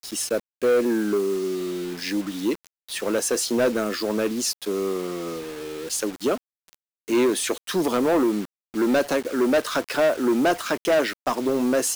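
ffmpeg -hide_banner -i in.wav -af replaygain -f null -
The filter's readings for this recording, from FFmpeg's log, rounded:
track_gain = +3.1 dB
track_peak = 0.123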